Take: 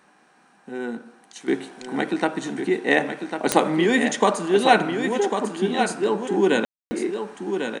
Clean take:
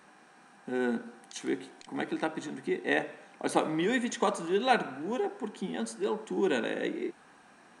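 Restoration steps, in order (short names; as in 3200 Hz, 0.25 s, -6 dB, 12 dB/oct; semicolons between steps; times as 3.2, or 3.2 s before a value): de-click; room tone fill 6.65–6.91; inverse comb 1.098 s -7 dB; gain 0 dB, from 1.48 s -9 dB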